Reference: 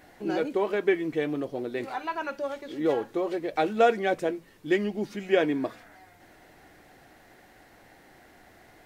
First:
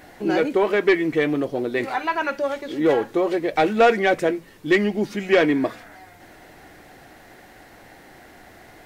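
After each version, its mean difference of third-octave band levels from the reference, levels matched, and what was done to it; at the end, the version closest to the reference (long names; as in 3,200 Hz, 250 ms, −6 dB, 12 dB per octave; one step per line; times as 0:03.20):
1.5 dB: dynamic equaliser 2,000 Hz, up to +6 dB, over −47 dBFS, Q 2.5
soft clipping −16.5 dBFS, distortion −15 dB
level +8 dB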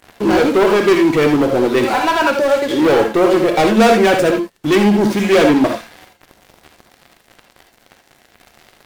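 7.5 dB: leveller curve on the samples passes 5
reverb whose tail is shaped and stops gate 100 ms rising, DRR 4 dB
level +1.5 dB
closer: first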